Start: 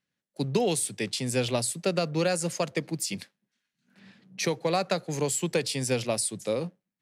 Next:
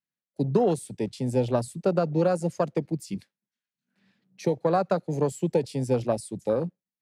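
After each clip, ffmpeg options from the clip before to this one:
-af "afwtdn=0.0282,volume=3.5dB"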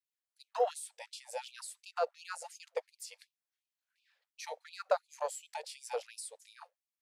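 -af "afftfilt=real='re*gte(b*sr/1024,450*pow(2400/450,0.5+0.5*sin(2*PI*2.8*pts/sr)))':imag='im*gte(b*sr/1024,450*pow(2400/450,0.5+0.5*sin(2*PI*2.8*pts/sr)))':win_size=1024:overlap=0.75,volume=-2.5dB"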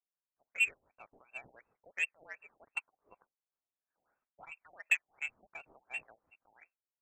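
-af "lowshelf=f=460:g=4,lowpass=f=2.7k:t=q:w=0.5098,lowpass=f=2.7k:t=q:w=0.6013,lowpass=f=2.7k:t=q:w=0.9,lowpass=f=2.7k:t=q:w=2.563,afreqshift=-3200,adynamicsmooth=sensitivity=1.5:basefreq=1.4k"

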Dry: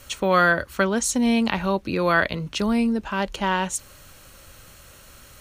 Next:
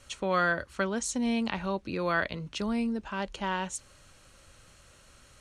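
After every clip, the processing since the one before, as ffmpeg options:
-af "lowpass=f=9.7k:w=0.5412,lowpass=f=9.7k:w=1.3066,volume=-8.5dB"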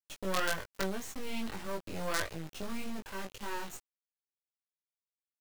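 -filter_complex "[0:a]acrossover=split=300|2200[a][b][c];[c]alimiter=level_in=4.5dB:limit=-24dB:level=0:latency=1:release=261,volume=-4.5dB[d];[a][b][d]amix=inputs=3:normalize=0,acrusher=bits=4:dc=4:mix=0:aa=0.000001,flanger=delay=18.5:depth=2.7:speed=1.7"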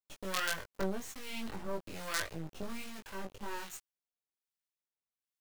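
-filter_complex "[0:a]acrossover=split=1200[a][b];[a]aeval=exprs='val(0)*(1-0.7/2+0.7/2*cos(2*PI*1.2*n/s))':c=same[c];[b]aeval=exprs='val(0)*(1-0.7/2-0.7/2*cos(2*PI*1.2*n/s))':c=same[d];[c][d]amix=inputs=2:normalize=0,volume=1dB"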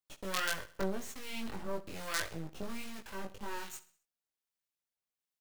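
-af "aecho=1:1:65|130|195|260:0.133|0.0627|0.0295|0.0138"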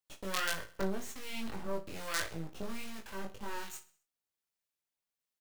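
-filter_complex "[0:a]asplit=2[a][b];[b]adelay=36,volume=-12dB[c];[a][c]amix=inputs=2:normalize=0"

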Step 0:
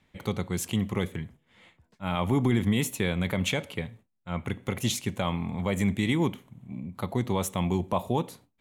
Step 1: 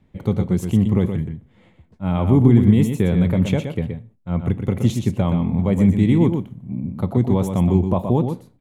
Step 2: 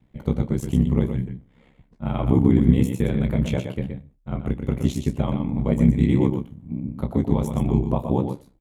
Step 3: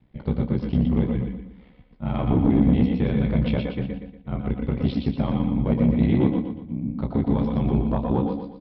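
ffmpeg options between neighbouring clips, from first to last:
-af "tiltshelf=f=770:g=9,aecho=1:1:122:0.447,volume=3dB"
-filter_complex "[0:a]asplit=2[a][b];[b]adelay=20,volume=-9dB[c];[a][c]amix=inputs=2:normalize=0,aeval=exprs='val(0)*sin(2*PI*33*n/s)':c=same,volume=-1dB"
-af "aresample=11025,asoftclip=type=tanh:threshold=-11dB,aresample=44100,aecho=1:1:118|236|354|472|590:0.501|0.19|0.0724|0.0275|0.0105"

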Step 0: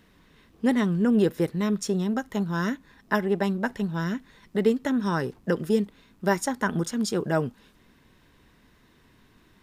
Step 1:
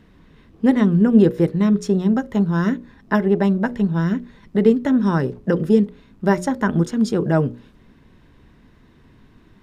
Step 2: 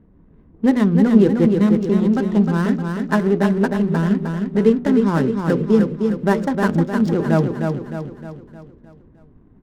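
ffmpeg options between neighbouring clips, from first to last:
-af "lowpass=f=3.9k:p=1,lowshelf=f=460:g=8.5,bandreject=f=60:t=h:w=6,bandreject=f=120:t=h:w=6,bandreject=f=180:t=h:w=6,bandreject=f=240:t=h:w=6,bandreject=f=300:t=h:w=6,bandreject=f=360:t=h:w=6,bandreject=f=420:t=h:w=6,bandreject=f=480:t=h:w=6,bandreject=f=540:t=h:w=6,bandreject=f=600:t=h:w=6,volume=2.5dB"
-af "adynamicsmooth=sensitivity=6.5:basefreq=540,aecho=1:1:308|616|924|1232|1540|1848:0.562|0.276|0.135|0.0662|0.0324|0.0159"

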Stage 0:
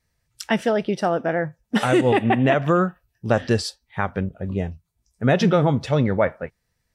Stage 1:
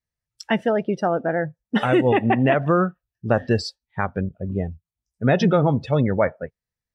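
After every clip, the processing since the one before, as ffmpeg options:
-af "afftdn=nr=17:nf=-31"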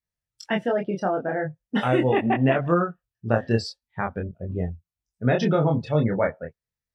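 -af "flanger=delay=22.5:depth=3.9:speed=0.42"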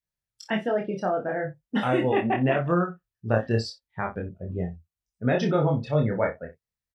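-af "aecho=1:1:28|63:0.398|0.126,volume=-2.5dB"

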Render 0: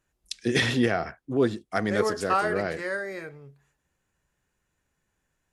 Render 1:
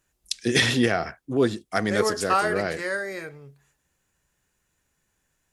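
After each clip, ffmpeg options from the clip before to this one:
-af "highshelf=f=3.5k:g=7.5,volume=1.5dB"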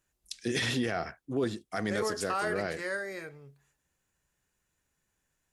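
-af "alimiter=limit=-15dB:level=0:latency=1:release=13,volume=-6dB"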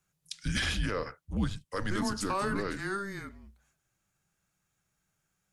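-af "afreqshift=-200"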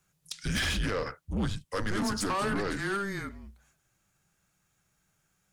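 -af "asoftclip=type=tanh:threshold=-30.5dB,volume=5.5dB"

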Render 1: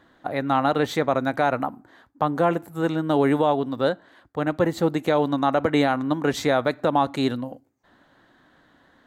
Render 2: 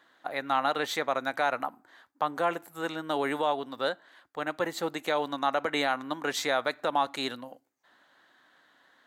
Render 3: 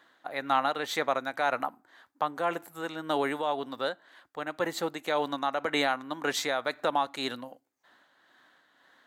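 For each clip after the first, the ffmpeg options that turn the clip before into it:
-af "highpass=f=1.3k:p=1"
-af "tremolo=f=1.9:d=0.42,volume=1.5dB"

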